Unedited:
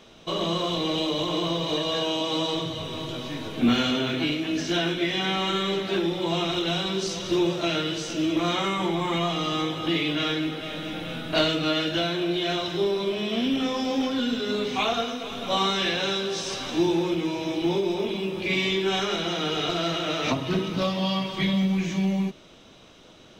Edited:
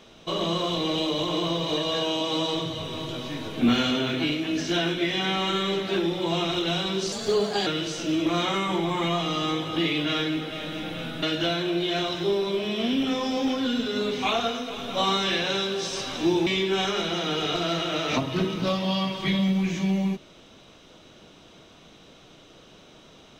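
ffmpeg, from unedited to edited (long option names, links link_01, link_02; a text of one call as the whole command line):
ffmpeg -i in.wav -filter_complex "[0:a]asplit=5[link_01][link_02][link_03][link_04][link_05];[link_01]atrim=end=7.124[link_06];[link_02]atrim=start=7.12:end=7.77,asetpts=PTS-STARTPTS,asetrate=52479,aresample=44100,atrim=end_sample=24088,asetpts=PTS-STARTPTS[link_07];[link_03]atrim=start=7.766:end=11.332[link_08];[link_04]atrim=start=11.758:end=17.002[link_09];[link_05]atrim=start=18.608[link_10];[link_06][link_07]acrossfade=duration=0.004:curve1=hsin:curve2=hsin[link_11];[link_11][link_08]acrossfade=duration=0.004:curve1=hsin:curve2=hsin[link_12];[link_12][link_09]acrossfade=duration=0.004:curve1=hsin:curve2=hsin[link_13];[link_13][link_10]acrossfade=duration=0.004:curve1=hsin:curve2=hsin" out.wav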